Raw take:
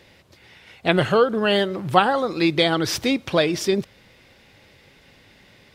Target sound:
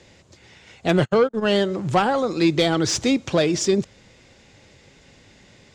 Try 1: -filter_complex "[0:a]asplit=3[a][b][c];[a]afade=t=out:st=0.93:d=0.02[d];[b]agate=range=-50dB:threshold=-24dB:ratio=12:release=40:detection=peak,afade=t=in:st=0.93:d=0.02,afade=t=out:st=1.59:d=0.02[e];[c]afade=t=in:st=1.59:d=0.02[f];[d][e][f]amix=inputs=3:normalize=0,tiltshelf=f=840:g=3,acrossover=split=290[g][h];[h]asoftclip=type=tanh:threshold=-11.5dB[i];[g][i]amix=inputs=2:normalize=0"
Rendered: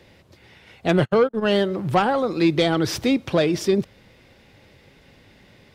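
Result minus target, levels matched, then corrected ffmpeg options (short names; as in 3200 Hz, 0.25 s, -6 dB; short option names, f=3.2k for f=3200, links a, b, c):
8000 Hz band -8.0 dB
-filter_complex "[0:a]asplit=3[a][b][c];[a]afade=t=out:st=0.93:d=0.02[d];[b]agate=range=-50dB:threshold=-24dB:ratio=12:release=40:detection=peak,afade=t=in:st=0.93:d=0.02,afade=t=out:st=1.59:d=0.02[e];[c]afade=t=in:st=1.59:d=0.02[f];[d][e][f]amix=inputs=3:normalize=0,lowpass=f=7.1k:t=q:w=4.3,tiltshelf=f=840:g=3,acrossover=split=290[g][h];[h]asoftclip=type=tanh:threshold=-11.5dB[i];[g][i]amix=inputs=2:normalize=0"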